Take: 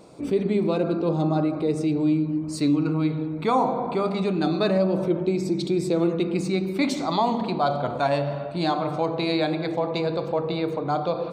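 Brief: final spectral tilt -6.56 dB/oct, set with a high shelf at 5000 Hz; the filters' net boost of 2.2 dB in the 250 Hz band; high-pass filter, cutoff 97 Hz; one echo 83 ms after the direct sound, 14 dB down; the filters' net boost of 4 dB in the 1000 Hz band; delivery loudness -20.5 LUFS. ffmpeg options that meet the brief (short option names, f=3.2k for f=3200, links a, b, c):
-af "highpass=97,equalizer=f=250:t=o:g=3,equalizer=f=1k:t=o:g=5.5,highshelf=f=5k:g=-7,aecho=1:1:83:0.2,volume=1.5dB"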